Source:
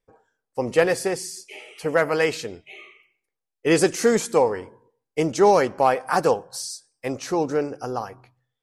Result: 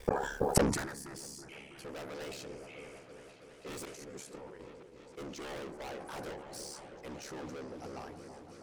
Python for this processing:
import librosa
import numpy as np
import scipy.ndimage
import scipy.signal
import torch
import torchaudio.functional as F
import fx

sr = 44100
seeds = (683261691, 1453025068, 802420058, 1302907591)

p1 = fx.auto_swell(x, sr, attack_ms=694.0, at=(3.85, 4.6))
p2 = fx.bandpass_edges(p1, sr, low_hz=170.0, high_hz=5200.0, at=(5.29, 5.98))
p3 = p2 * np.sin(2.0 * np.pi * 35.0 * np.arange(len(p2)) / sr)
p4 = fx.fold_sine(p3, sr, drive_db=14, ceiling_db=-6.5)
p5 = p3 + (p4 * 10.0 ** (-3.5 / 20.0))
p6 = fx.fixed_phaser(p5, sr, hz=1200.0, stages=4, at=(0.7, 1.15))
p7 = 10.0 ** (-18.0 / 20.0) * np.tanh(p6 / 10.0 ** (-18.0 / 20.0))
p8 = p7 + fx.echo_opening(p7, sr, ms=325, hz=750, octaves=1, feedback_pct=70, wet_db=-6, dry=0)
p9 = fx.gate_flip(p8, sr, shuts_db=-29.0, range_db=-40)
p10 = fx.sustainer(p9, sr, db_per_s=60.0)
y = p10 * 10.0 ** (17.0 / 20.0)